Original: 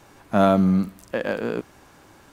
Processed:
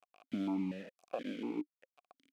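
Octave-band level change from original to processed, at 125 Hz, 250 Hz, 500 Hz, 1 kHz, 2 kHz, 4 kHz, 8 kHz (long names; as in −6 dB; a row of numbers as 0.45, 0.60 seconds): −22.5 dB, −15.0 dB, −21.5 dB, −22.5 dB, −20.5 dB, −14.5 dB, can't be measured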